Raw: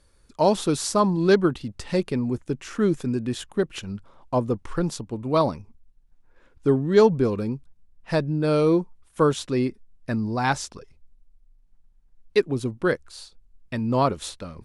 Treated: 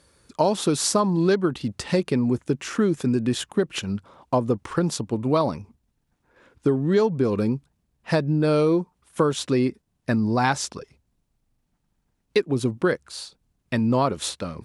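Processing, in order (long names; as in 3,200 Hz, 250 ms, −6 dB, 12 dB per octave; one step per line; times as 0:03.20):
downward compressor 6 to 1, threshold −23 dBFS, peak gain reduction 11.5 dB
high-pass filter 93 Hz 12 dB per octave
level +6 dB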